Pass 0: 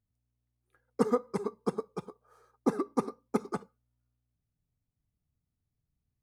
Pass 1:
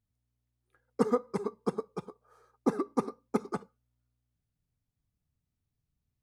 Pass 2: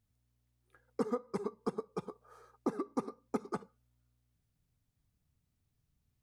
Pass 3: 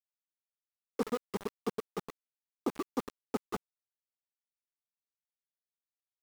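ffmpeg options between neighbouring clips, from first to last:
ffmpeg -i in.wav -af "highshelf=frequency=9800:gain=-4.5" out.wav
ffmpeg -i in.wav -af "acompressor=threshold=-40dB:ratio=2.5,volume=4dB" out.wav
ffmpeg -i in.wav -af "aeval=exprs='val(0)*gte(abs(val(0)),0.0141)':channel_layout=same,volume=1dB" out.wav

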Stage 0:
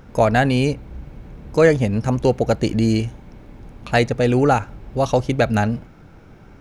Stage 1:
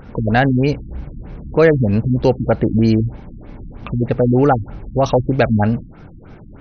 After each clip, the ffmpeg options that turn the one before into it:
ffmpeg -i in.wav -filter_complex "[0:a]asplit=2[link_01][link_02];[link_02]alimiter=limit=-14dB:level=0:latency=1:release=59,volume=1.5dB[link_03];[link_01][link_03]amix=inputs=2:normalize=0,afftfilt=real='re*lt(b*sr/1024,300*pow(6400/300,0.5+0.5*sin(2*PI*3.2*pts/sr)))':imag='im*lt(b*sr/1024,300*pow(6400/300,0.5+0.5*sin(2*PI*3.2*pts/sr)))':win_size=1024:overlap=0.75,volume=-1dB" out.wav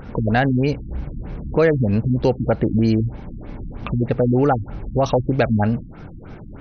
ffmpeg -i in.wav -af "acompressor=threshold=-25dB:ratio=1.5,volume=2dB" out.wav

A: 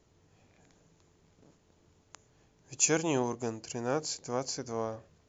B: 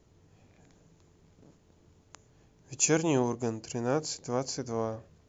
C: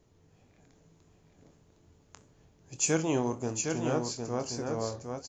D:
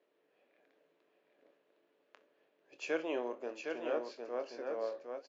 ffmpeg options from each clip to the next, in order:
ffmpeg -i in.wav -af "lowshelf=frequency=420:gain=5.5" out.wav
ffmpeg -i in.wav -filter_complex "[0:a]asplit=2[link_01][link_02];[link_02]adelay=25,volume=-11dB[link_03];[link_01][link_03]amix=inputs=2:normalize=0,aecho=1:1:62|760:0.106|0.562,flanger=delay=5.7:depth=6.6:regen=-81:speed=1.7:shape=triangular,volume=2dB" out.wav
ffmpeg -i in.wav -af "highpass=frequency=330:width=0.5412,highpass=frequency=330:width=1.3066,equalizer=frequency=570:width_type=q:width=4:gain=8,equalizer=frequency=840:width_type=q:width=4:gain=-4,equalizer=frequency=1700:width_type=q:width=4:gain=5,equalizer=frequency=2600:width_type=q:width=4:gain=4,lowpass=frequency=3800:width=0.5412,lowpass=frequency=3800:width=1.3066,volume=-7dB" out.wav

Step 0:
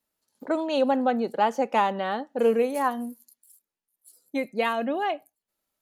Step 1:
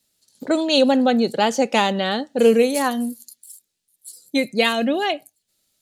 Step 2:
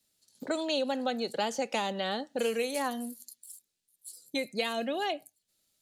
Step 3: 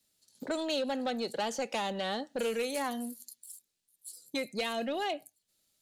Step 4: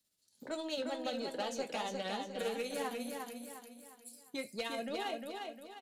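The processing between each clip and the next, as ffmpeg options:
ffmpeg -i in.wav -af "equalizer=frequency=125:width_type=o:width=1:gain=8,equalizer=frequency=1000:width_type=o:width=1:gain=-8,equalizer=frequency=4000:width_type=o:width=1:gain=9,equalizer=frequency=8000:width_type=o:width=1:gain=9,volume=7.5dB" out.wav
ffmpeg -i in.wav -filter_complex "[0:a]acrossover=split=460|920|3800[link_01][link_02][link_03][link_04];[link_01]acompressor=threshold=-33dB:ratio=4[link_05];[link_02]acompressor=threshold=-27dB:ratio=4[link_06];[link_03]acompressor=threshold=-31dB:ratio=4[link_07];[link_04]acompressor=threshold=-34dB:ratio=4[link_08];[link_05][link_06][link_07][link_08]amix=inputs=4:normalize=0,volume=-6dB" out.wav
ffmpeg -i in.wav -af "asoftclip=type=tanh:threshold=-25.5dB" out.wav
ffmpeg -i in.wav -af "tremolo=f=15:d=0.47,flanger=delay=9.6:depth=8.7:regen=-57:speed=0.44:shape=triangular,aecho=1:1:354|708|1062|1416|1770:0.596|0.244|0.1|0.0411|0.0168" out.wav

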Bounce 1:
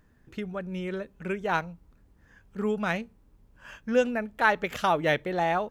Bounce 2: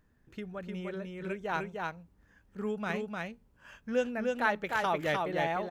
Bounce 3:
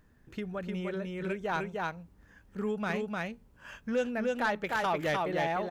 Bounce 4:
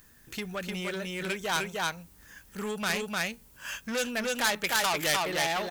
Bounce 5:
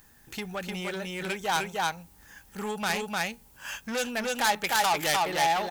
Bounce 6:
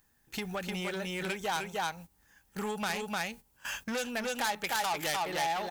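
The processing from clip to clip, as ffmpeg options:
ffmpeg -i in.wav -af "aecho=1:1:303:0.708,volume=-6.5dB" out.wav
ffmpeg -i in.wav -filter_complex "[0:a]asplit=2[link_01][link_02];[link_02]acompressor=threshold=-39dB:ratio=6,volume=-1.5dB[link_03];[link_01][link_03]amix=inputs=2:normalize=0,asoftclip=type=tanh:threshold=-21dB" out.wav
ffmpeg -i in.wav -af "asoftclip=type=tanh:threshold=-29.5dB,crystalizer=i=10:c=0" out.wav
ffmpeg -i in.wav -af "equalizer=frequency=820:width=5.8:gain=10" out.wav
ffmpeg -i in.wav -af "agate=range=-14dB:threshold=-43dB:ratio=16:detection=peak,acompressor=threshold=-36dB:ratio=2,volume=1.5dB" out.wav

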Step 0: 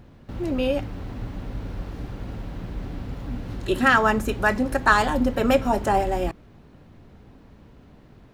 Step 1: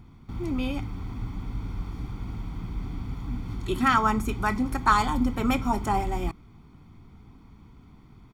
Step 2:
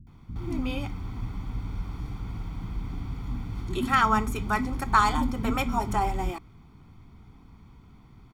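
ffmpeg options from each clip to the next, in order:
ffmpeg -i in.wav -af "aecho=1:1:0.9:0.78,volume=-5dB" out.wav
ffmpeg -i in.wav -filter_complex "[0:a]acrossover=split=280[link_01][link_02];[link_02]adelay=70[link_03];[link_01][link_03]amix=inputs=2:normalize=0" out.wav

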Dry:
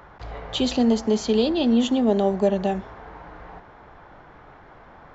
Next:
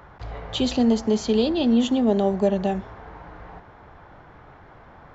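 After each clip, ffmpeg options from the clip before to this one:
ffmpeg -i in.wav -af "equalizer=frequency=95:width=0.89:gain=5.5,volume=-1dB" out.wav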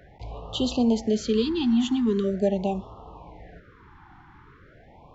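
ffmpeg -i in.wav -af "afftfilt=real='re*(1-between(b*sr/1024,510*pow(1900/510,0.5+0.5*sin(2*PI*0.42*pts/sr))/1.41,510*pow(1900/510,0.5+0.5*sin(2*PI*0.42*pts/sr))*1.41))':imag='im*(1-between(b*sr/1024,510*pow(1900/510,0.5+0.5*sin(2*PI*0.42*pts/sr))/1.41,510*pow(1900/510,0.5+0.5*sin(2*PI*0.42*pts/sr))*1.41))':win_size=1024:overlap=0.75,volume=-2.5dB" out.wav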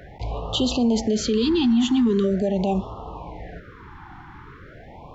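ffmpeg -i in.wav -af "alimiter=limit=-22dB:level=0:latency=1:release=47,volume=8.5dB" out.wav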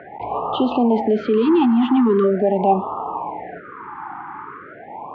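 ffmpeg -i in.wav -af "highpass=310,equalizer=frequency=530:width_type=q:width=4:gain=-5,equalizer=frequency=850:width_type=q:width=4:gain=6,equalizer=frequency=1200:width_type=q:width=4:gain=6,equalizer=frequency=1800:width_type=q:width=4:gain=-4,lowpass=frequency=2100:width=0.5412,lowpass=frequency=2100:width=1.3066,volume=8.5dB" out.wav

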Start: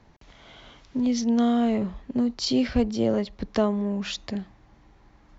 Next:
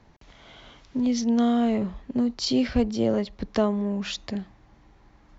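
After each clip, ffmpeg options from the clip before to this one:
ffmpeg -i in.wav -af anull out.wav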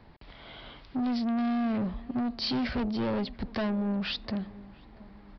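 ffmpeg -i in.wav -filter_complex "[0:a]aresample=11025,asoftclip=type=tanh:threshold=-28.5dB,aresample=44100,asplit=2[link_01][link_02];[link_02]adelay=685,lowpass=frequency=880:poles=1,volume=-19dB,asplit=2[link_03][link_04];[link_04]adelay=685,lowpass=frequency=880:poles=1,volume=0.47,asplit=2[link_05][link_06];[link_06]adelay=685,lowpass=frequency=880:poles=1,volume=0.47,asplit=2[link_07][link_08];[link_08]adelay=685,lowpass=frequency=880:poles=1,volume=0.47[link_09];[link_01][link_03][link_05][link_07][link_09]amix=inputs=5:normalize=0,volume=2dB" out.wav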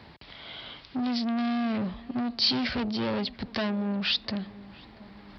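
ffmpeg -i in.wav -af "highpass=69,equalizer=frequency=4300:width=0.52:gain=8.5,areverse,acompressor=mode=upward:threshold=-42dB:ratio=2.5,areverse" out.wav

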